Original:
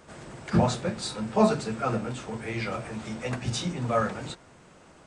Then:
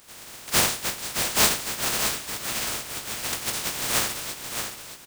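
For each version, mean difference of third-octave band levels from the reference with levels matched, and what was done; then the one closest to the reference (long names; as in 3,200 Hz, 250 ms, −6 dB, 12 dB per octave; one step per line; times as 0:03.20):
13.0 dB: compressing power law on the bin magnitudes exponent 0.11
on a send: repeating echo 620 ms, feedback 35%, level −7 dB
on the sum: level +1 dB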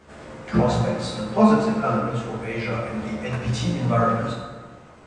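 4.0 dB: high-shelf EQ 6,400 Hz −11 dB
multi-voice chorus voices 2, 0.65 Hz, delay 15 ms, depth 2.2 ms
dense smooth reverb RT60 1.5 s, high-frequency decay 0.6×, DRR −0.5 dB
level +5 dB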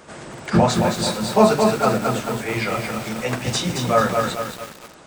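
6.0 dB: low-shelf EQ 130 Hz −8.5 dB
on a send: delay with a high-pass on its return 135 ms, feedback 82%, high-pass 2,200 Hz, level −21 dB
on the sum: feedback echo at a low word length 219 ms, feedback 55%, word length 7 bits, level −4 dB
level +8.5 dB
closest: second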